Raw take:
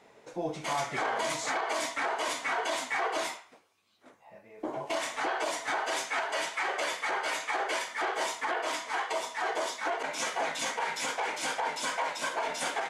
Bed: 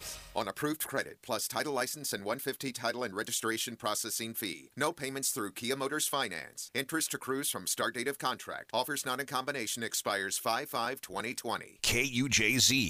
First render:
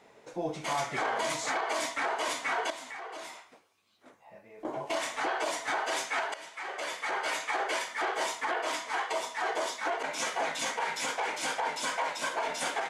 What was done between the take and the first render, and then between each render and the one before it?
2.70–4.65 s: compression 3:1, threshold -42 dBFS; 6.34–7.26 s: fade in, from -16.5 dB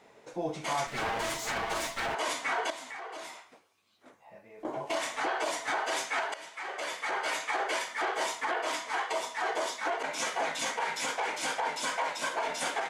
0.87–2.15 s: comb filter that takes the minimum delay 8.8 ms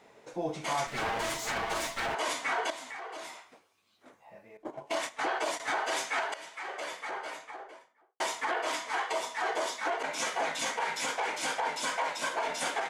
4.57–5.60 s: gate -35 dBFS, range -13 dB; 6.44–8.20 s: studio fade out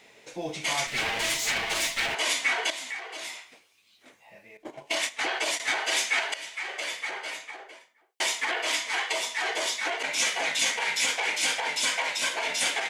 resonant high shelf 1.7 kHz +8.5 dB, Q 1.5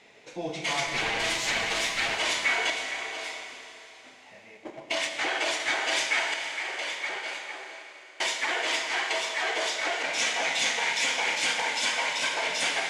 distance through air 56 m; Schroeder reverb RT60 3.6 s, combs from 31 ms, DRR 4 dB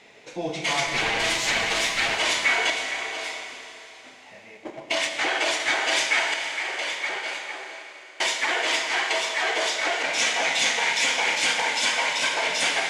trim +4 dB

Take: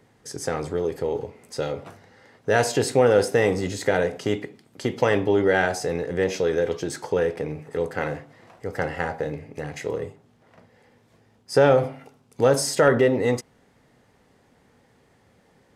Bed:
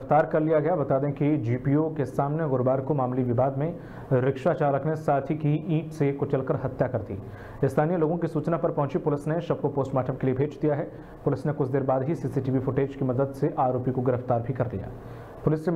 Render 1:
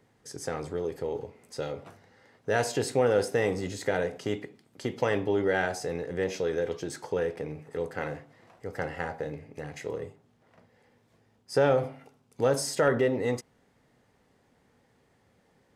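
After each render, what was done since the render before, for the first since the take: trim -6.5 dB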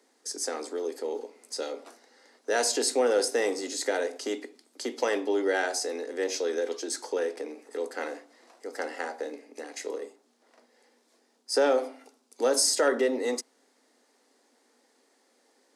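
steep high-pass 240 Hz 72 dB/octave; high-order bell 6.6 kHz +9.5 dB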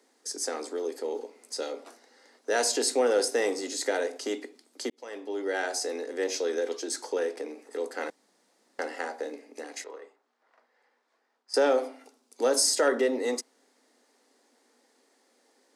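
4.90–5.86 s: fade in; 8.10–8.79 s: room tone; 9.84–11.54 s: band-pass filter 1.3 kHz, Q 1.1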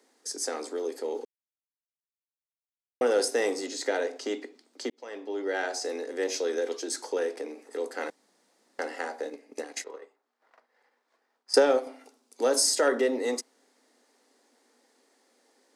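1.25–3.01 s: mute; 3.66–5.85 s: peaking EQ 11 kHz -11 dB 0.85 oct; 9.23–11.87 s: transient shaper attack +6 dB, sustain -5 dB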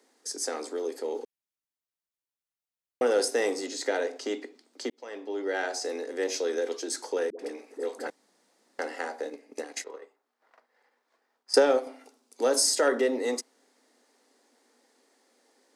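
7.30–8.07 s: phase dispersion highs, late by 90 ms, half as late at 510 Hz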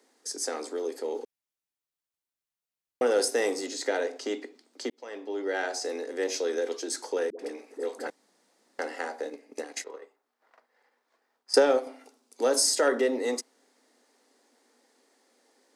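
3.16–3.74 s: treble shelf 11 kHz +6 dB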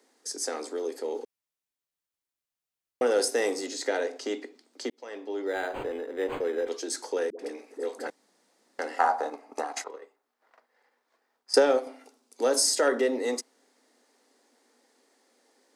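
5.46–6.68 s: decimation joined by straight lines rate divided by 8×; 8.99–9.88 s: high-order bell 970 Hz +15.5 dB 1.3 oct

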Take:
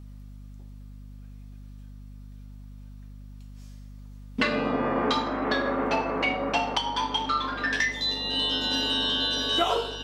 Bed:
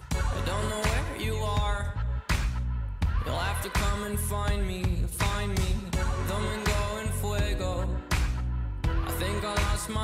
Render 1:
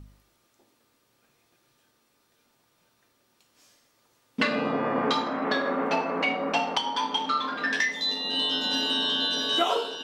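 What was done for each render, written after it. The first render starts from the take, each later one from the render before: de-hum 50 Hz, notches 10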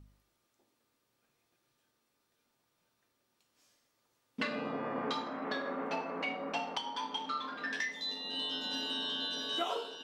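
trim -10.5 dB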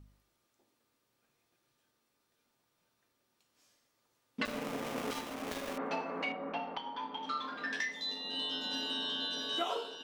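4.45–5.78 s: dead-time distortion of 0.29 ms; 6.32–7.23 s: distance through air 320 m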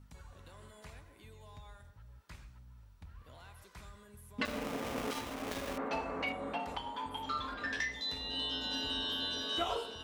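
add bed -25 dB

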